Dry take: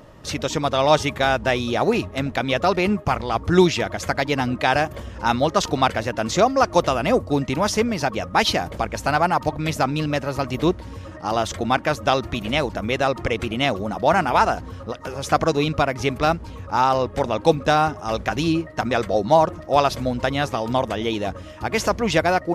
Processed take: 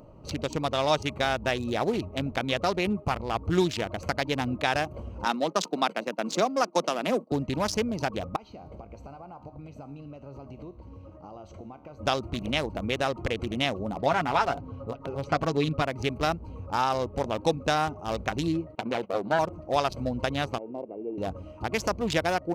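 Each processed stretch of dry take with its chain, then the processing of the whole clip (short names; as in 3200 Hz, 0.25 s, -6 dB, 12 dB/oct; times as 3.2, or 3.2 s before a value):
5.25–7.32 gate -30 dBFS, range -16 dB + steep high-pass 170 Hz 48 dB/oct
8.36–12 bell 9800 Hz -13 dB 0.32 oct + compressor 8:1, threshold -28 dBFS + resonator 69 Hz, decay 0.7 s
13.97–15.82 LPF 4500 Hz + comb 7.2 ms, depth 57%
18.75–19.39 minimum comb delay 0.33 ms + BPF 210–3100 Hz + gate -32 dBFS, range -15 dB
20.58–21.18 sample sorter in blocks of 16 samples + ladder band-pass 480 Hz, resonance 35% + low shelf 370 Hz +9.5 dB
whole clip: Wiener smoothing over 25 samples; high shelf 2800 Hz +8 dB; compressor 1.5:1, threshold -25 dBFS; gain -3.5 dB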